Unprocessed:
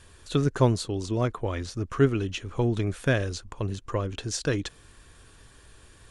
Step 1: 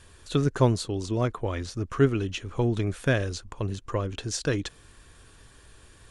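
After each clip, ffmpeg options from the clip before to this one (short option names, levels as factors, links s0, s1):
-af anull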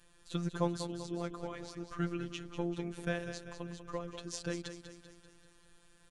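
-af "aecho=1:1:194|388|582|776|970|1164:0.316|0.168|0.0888|0.0471|0.025|0.0132,afftfilt=real='hypot(re,im)*cos(PI*b)':imag='0':win_size=1024:overlap=0.75,volume=0.422"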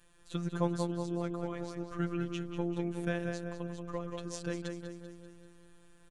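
-filter_complex "[0:a]equalizer=f=4700:t=o:w=0.73:g=-4,asplit=2[s0][s1];[s1]adelay=180,lowpass=f=2000:p=1,volume=0.398,asplit=2[s2][s3];[s3]adelay=180,lowpass=f=2000:p=1,volume=0.51,asplit=2[s4][s5];[s5]adelay=180,lowpass=f=2000:p=1,volume=0.51,asplit=2[s6][s7];[s7]adelay=180,lowpass=f=2000:p=1,volume=0.51,asplit=2[s8][s9];[s9]adelay=180,lowpass=f=2000:p=1,volume=0.51,asplit=2[s10][s11];[s11]adelay=180,lowpass=f=2000:p=1,volume=0.51[s12];[s0][s2][s4][s6][s8][s10][s12]amix=inputs=7:normalize=0"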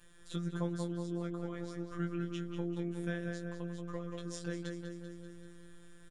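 -filter_complex "[0:a]acompressor=threshold=0.00316:ratio=1.5,asplit=2[s0][s1];[s1]adelay=18,volume=0.631[s2];[s0][s2]amix=inputs=2:normalize=0,volume=1.19"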